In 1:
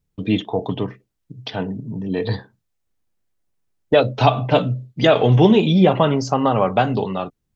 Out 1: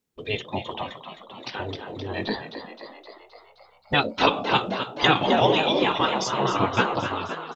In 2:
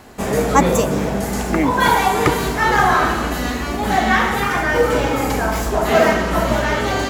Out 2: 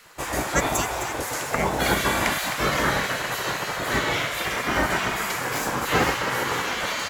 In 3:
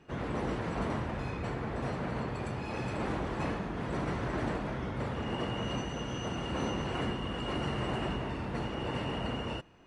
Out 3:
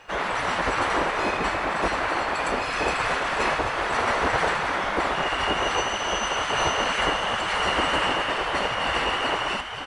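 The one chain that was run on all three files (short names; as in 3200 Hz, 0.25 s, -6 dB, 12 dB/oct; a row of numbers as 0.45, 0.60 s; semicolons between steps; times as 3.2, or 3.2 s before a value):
frequency-shifting echo 0.261 s, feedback 63%, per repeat +67 Hz, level -9.5 dB; spectral gate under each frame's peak -10 dB weak; match loudness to -24 LUFS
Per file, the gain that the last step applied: +1.5, -1.5, +16.5 dB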